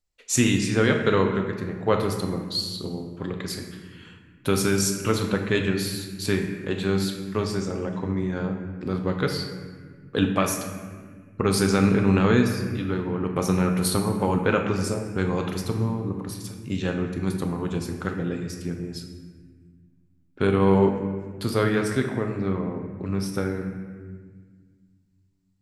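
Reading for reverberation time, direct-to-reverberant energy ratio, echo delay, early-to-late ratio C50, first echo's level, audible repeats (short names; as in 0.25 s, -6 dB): 1.6 s, 3.0 dB, none, 5.5 dB, none, none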